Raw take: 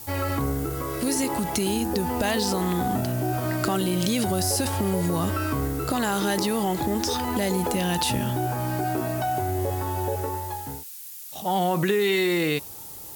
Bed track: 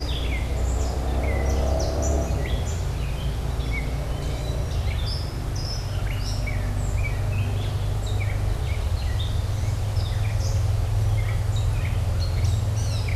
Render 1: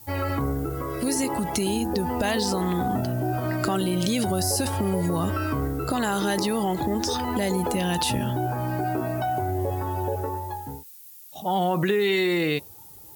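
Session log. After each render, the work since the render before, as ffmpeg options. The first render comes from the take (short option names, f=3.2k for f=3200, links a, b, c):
-af "afftdn=nr=10:nf=-40"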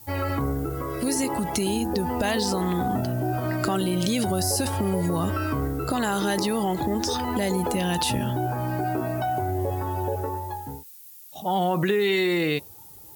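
-af anull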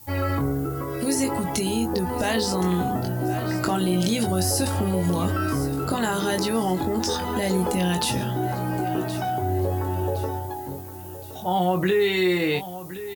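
-filter_complex "[0:a]asplit=2[a][b];[b]adelay=22,volume=-6.5dB[c];[a][c]amix=inputs=2:normalize=0,aecho=1:1:1068|2136|3204|4272:0.2|0.0858|0.0369|0.0159"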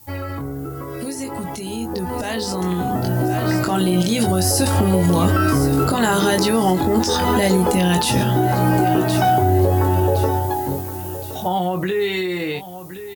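-af "alimiter=limit=-19dB:level=0:latency=1:release=302,dynaudnorm=f=850:g=7:m=12dB"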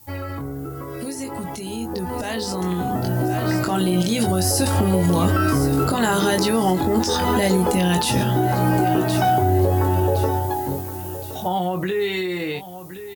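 -af "volume=-2dB"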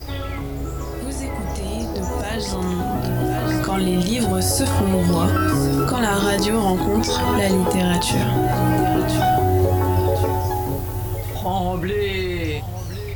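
-filter_complex "[1:a]volume=-5.5dB[a];[0:a][a]amix=inputs=2:normalize=0"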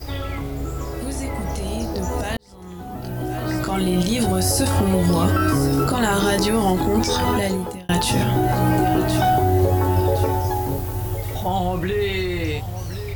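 -filter_complex "[0:a]asplit=3[a][b][c];[a]atrim=end=2.37,asetpts=PTS-STARTPTS,afade=t=out:st=2.366:d=0.004:c=hsin[d];[b]atrim=start=2.37:end=7.89,asetpts=PTS-STARTPTS,afade=t=in:d=1.63,afade=t=out:st=4.89:d=0.63[e];[c]atrim=start=7.89,asetpts=PTS-STARTPTS,afade=t=in:d=0.004:c=hsin[f];[d][e][f]concat=n=3:v=0:a=1"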